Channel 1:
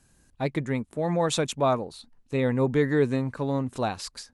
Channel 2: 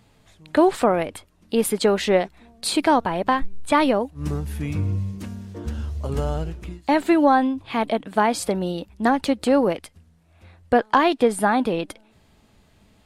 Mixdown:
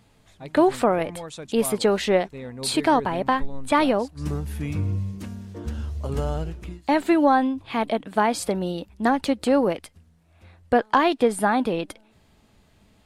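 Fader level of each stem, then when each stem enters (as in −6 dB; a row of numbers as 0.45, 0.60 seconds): −12.0, −1.5 decibels; 0.00, 0.00 seconds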